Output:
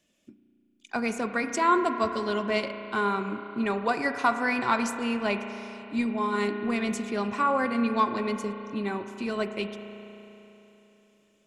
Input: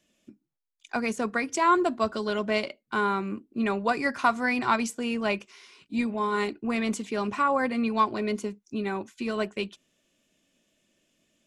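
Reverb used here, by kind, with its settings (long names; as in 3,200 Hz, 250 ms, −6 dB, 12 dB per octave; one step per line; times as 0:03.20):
spring reverb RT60 3.4 s, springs 34 ms, chirp 75 ms, DRR 7.5 dB
level −1 dB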